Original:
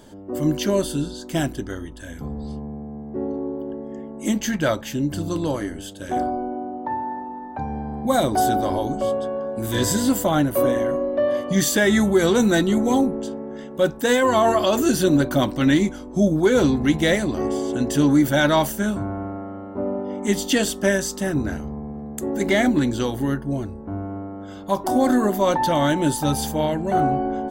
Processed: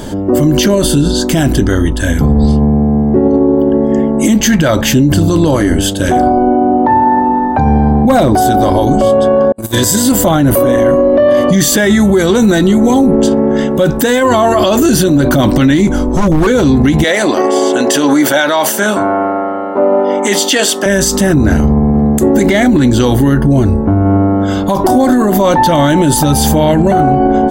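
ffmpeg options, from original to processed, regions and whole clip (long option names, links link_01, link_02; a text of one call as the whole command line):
ffmpeg -i in.wav -filter_complex "[0:a]asettb=1/sr,asplit=3[link_01][link_02][link_03];[link_01]atrim=end=7.914[link_04];[link_02]atrim=start=7.91:end=8.35,asetpts=PTS-STARTPTS,afade=type=in:duration=0.004:curve=qsin,afade=type=out:start_time=0.436:duration=0.004:curve=qsin,equalizer=frequency=9600:width_type=o:width=3:gain=-8.5,asoftclip=type=hard:threshold=-14.5dB[link_05];[link_03]atrim=start=8.346[link_06];[link_04][link_05]acrossfade=duration=0.004:curve1=hsin:curve2=qsin[link_07];[link_07][link_06]acrossfade=duration=0.004:curve1=qsin:curve2=hsin,asettb=1/sr,asplit=3[link_08][link_09][link_10];[link_08]atrim=end=9.524[link_11];[link_09]atrim=start=9.52:end=10.12,asetpts=PTS-STARTPTS,afade=type=in:duration=0.004:curve=qsin,afade=type=out:start_time=0.596:duration=0.004:curve=qsin,highpass=88,agate=range=-42dB:threshold=-24dB:ratio=16:release=100:detection=peak,highshelf=frequency=4600:gain=10[link_12];[link_10]atrim=start=10.116[link_13];[link_11][link_12]acrossfade=duration=0.004:curve1=hsin:curve2=qsin[link_14];[link_14][link_13]acrossfade=duration=0.004:curve1=qsin:curve2=hsin,asettb=1/sr,asplit=3[link_15][link_16][link_17];[link_15]atrim=end=15.874[link_18];[link_16]atrim=start=15.87:end=16.47,asetpts=PTS-STARTPTS,afade=type=in:duration=0.004:curve=qsin,afade=type=out:start_time=0.596:duration=0.004:curve=qsin,acrossover=split=300|1600|4500[link_19][link_20][link_21][link_22];[link_19]acompressor=threshold=-27dB:ratio=3[link_23];[link_20]acompressor=threshold=-29dB:ratio=3[link_24];[link_21]acompressor=threshold=-58dB:ratio=3[link_25];[link_22]acompressor=threshold=-54dB:ratio=3[link_26];[link_23][link_24][link_25][link_26]amix=inputs=4:normalize=0,aeval=exprs='0.0794*(abs(mod(val(0)/0.0794+3,4)-2)-1)':channel_layout=same,asubboost=boost=11.5:cutoff=110[link_27];[link_17]atrim=start=16.466[link_28];[link_18][link_27]acrossfade=duration=0.004:curve1=hsin:curve2=qsin[link_29];[link_29][link_28]acrossfade=duration=0.004:curve1=qsin:curve2=hsin,asettb=1/sr,asplit=3[link_30][link_31][link_32];[link_30]atrim=end=17.044[link_33];[link_31]atrim=start=17.04:end=20.86,asetpts=PTS-STARTPTS,afade=type=in:duration=0.004:curve=qsin,afade=type=out:start_time=3.816:duration=0.004:curve=qsin,highpass=500,highshelf=frequency=10000:gain=-7.5[link_34];[link_32]atrim=start=20.856[link_35];[link_33][link_34]acrossfade=duration=0.004:curve1=hsin:curve2=qsin[link_36];[link_36][link_35]acrossfade=duration=0.004:curve1=qsin:curve2=hsin,lowshelf=frequency=200:gain=5,acompressor=threshold=-18dB:ratio=6,alimiter=level_in=22.5dB:limit=-1dB:release=50:level=0:latency=1,volume=-1dB" out.wav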